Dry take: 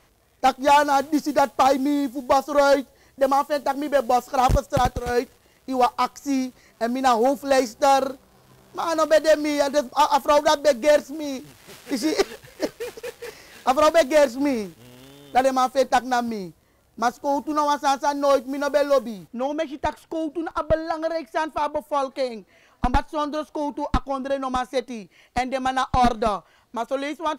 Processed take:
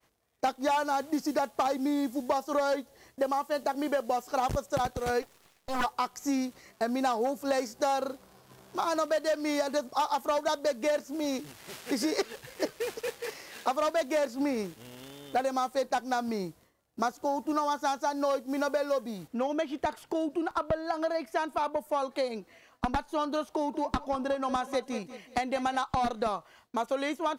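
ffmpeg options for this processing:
-filter_complex "[0:a]asplit=3[a][b][c];[a]afade=t=out:st=5.21:d=0.02[d];[b]aeval=exprs='abs(val(0))':c=same,afade=t=in:st=5.21:d=0.02,afade=t=out:st=5.83:d=0.02[e];[c]afade=t=in:st=5.83:d=0.02[f];[d][e][f]amix=inputs=3:normalize=0,asettb=1/sr,asplit=3[g][h][i];[g]atrim=end=13.194[j];[h]atrim=start=13.19:end=13.83,asetpts=PTS-STARTPTS,afade=t=in:d=0.004:c=qsin,afade=t=out:st=0.636:d=0.004:c=qsin,lowshelf=f=140:g=-7.5[k];[i]atrim=start=13.826[l];[j][k]acrossfade=d=0.004:c1=hsin:c2=qsin[m];[m][l]acrossfade=d=0.004:c1=qsin:c2=hsin,asettb=1/sr,asplit=3[n][o][p];[n]atrim=end=23.424[q];[o]atrim=start=23.42:end=25.8,asetpts=PTS-STARTPTS,afade=t=in:d=0.004:c=qsin,afade=t=out:st=2.376:d=0.004:c=qsin,aecho=1:1:186|372|558:0.178|0.0676|0.0257,atrim=end_sample=104958[r];[p]atrim=start=25.796[s];[q][r]acrossfade=d=0.004:c1=hsin:c2=qsin[t];[t][s]acrossfade=d=0.004:c1=qsin:c2=hsin,agate=range=-33dB:threshold=-51dB:ratio=3:detection=peak,lowshelf=f=88:g=-10.5,acompressor=threshold=-26dB:ratio=6"

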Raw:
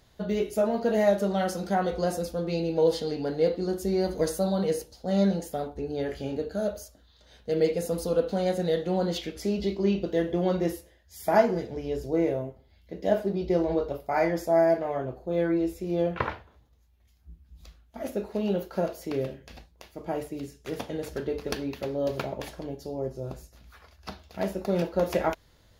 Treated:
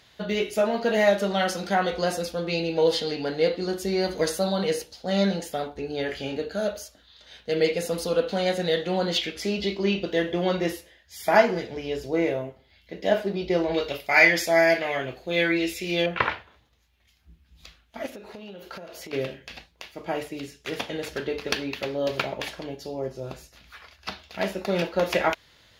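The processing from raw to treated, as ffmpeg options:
-filter_complex "[0:a]asettb=1/sr,asplit=3[a][b][c];[a]atrim=end=13.744[d];[b]atrim=start=13.74:end=16.06,asetpts=PTS-STARTPTS,afade=t=in:d=0.004:c=qsin,afade=t=out:st=2.316:d=0.004:c=qsin,highshelf=f=1.6k:t=q:w=1.5:g=9[e];[c]atrim=start=16.056[f];[d][e]acrossfade=d=0.004:c1=hsin:c2=qsin[g];[g][f]acrossfade=d=0.004:c1=qsin:c2=hsin,asettb=1/sr,asplit=3[h][i][j];[h]atrim=end=18.064[k];[i]atrim=start=18.06:end=19.13,asetpts=PTS-STARTPTS,afade=t=in:d=0.004:c=qsin,afade=t=out:st=1.066:d=0.004:c=qsin,acompressor=threshold=-38dB:ratio=12:attack=3.2:release=140:knee=1:detection=peak[l];[j]atrim=start=19.126[m];[k][l]acrossfade=d=0.004:c1=hsin:c2=qsin[n];[n][m]acrossfade=d=0.004:c1=qsin:c2=hsin,highpass=f=95:p=1,equalizer=f=2.7k:w=0.55:g=12"

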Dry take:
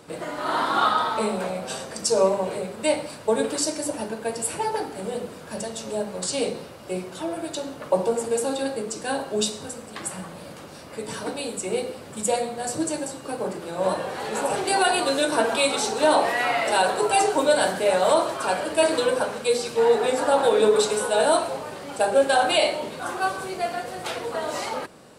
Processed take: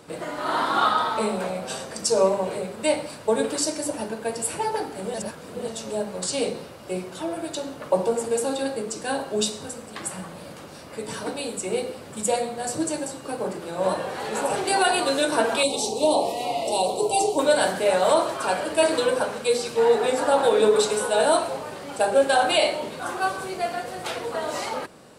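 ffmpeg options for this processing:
-filter_complex "[0:a]asettb=1/sr,asplit=3[a][b][c];[a]atrim=end=15.634[d];[b]atrim=start=15.63:end=17.39,asetpts=PTS-STARTPTS,afade=t=in:d=0.004:c=qsin,afade=t=out:st=1.756:d=0.004:c=qsin,asuperstop=centerf=1600:order=4:qfactor=0.69[e];[c]atrim=start=17.386[f];[d][e]acrossfade=d=0.004:c1=hsin:c2=qsin[g];[g][f]acrossfade=d=0.004:c1=qsin:c2=hsin,asplit=3[h][i][j];[h]atrim=end=5.142[k];[i]atrim=start=5.138:end=5.682,asetpts=PTS-STARTPTS,areverse[l];[j]atrim=start=5.678[m];[k][l]acrossfade=d=0.004:c1=hsin:c2=hsin[n];[n][m]acrossfade=d=0.004:c1=hsin:c2=hsin"

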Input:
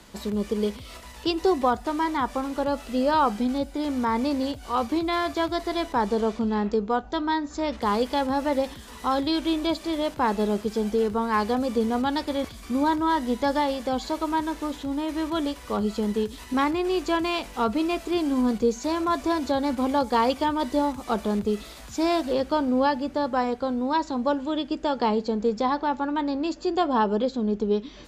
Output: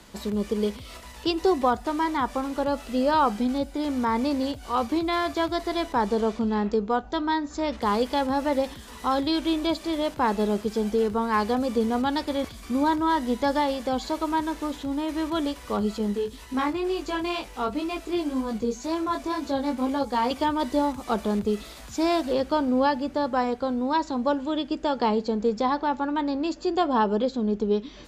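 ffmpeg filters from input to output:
-filter_complex "[0:a]asettb=1/sr,asplit=3[a][b][c];[a]atrim=end=15.984[d];[b]atrim=start=15.98:end=20.31,asetpts=PTS-STARTPTS,afade=t=in:d=0.004:c=qsin,afade=t=out:st=4.326:d=0.004:c=qsin,flanger=delay=18:depth=2.8:speed=2[e];[c]atrim=start=20.306[f];[d][e]acrossfade=d=0.004:c1=hsin:c2=qsin[g];[g][f]acrossfade=d=0.004:c1=qsin:c2=hsin"

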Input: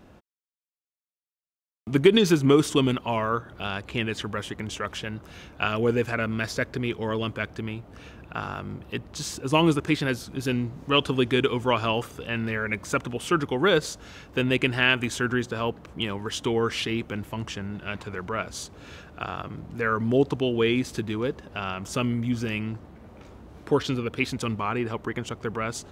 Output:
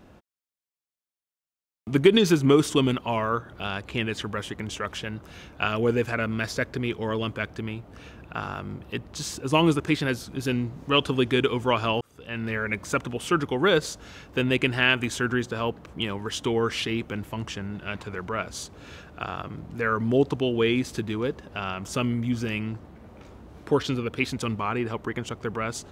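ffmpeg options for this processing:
-filter_complex "[0:a]asplit=2[a][b];[a]atrim=end=12.01,asetpts=PTS-STARTPTS,afade=t=out:st=12.006:d=0.004:c=hsin[c];[b]atrim=start=12.01,asetpts=PTS-STARTPTS,afade=t=in:d=0.53[d];[c][d]concat=n=2:v=0:a=1"

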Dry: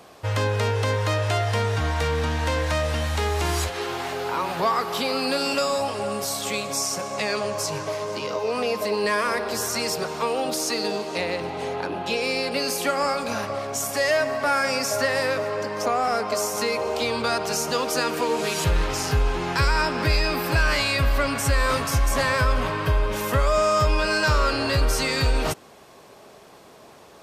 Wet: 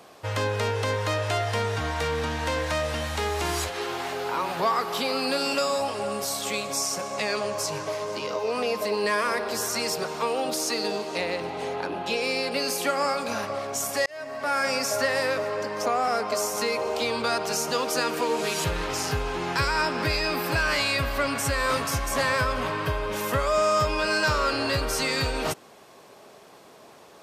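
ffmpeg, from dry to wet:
-filter_complex "[0:a]asplit=2[a][b];[a]atrim=end=14.06,asetpts=PTS-STARTPTS,afade=t=out:st=14.056:d=0.004:c=hsin[c];[b]atrim=start=14.06,asetpts=PTS-STARTPTS,afade=t=in:d=0.6[d];[c][d]concat=n=2:v=0:a=1,highpass=f=140:p=1,volume=-1.5dB"

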